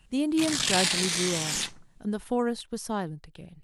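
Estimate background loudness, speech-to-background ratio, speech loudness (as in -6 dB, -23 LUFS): -26.5 LUFS, -4.0 dB, -30.5 LUFS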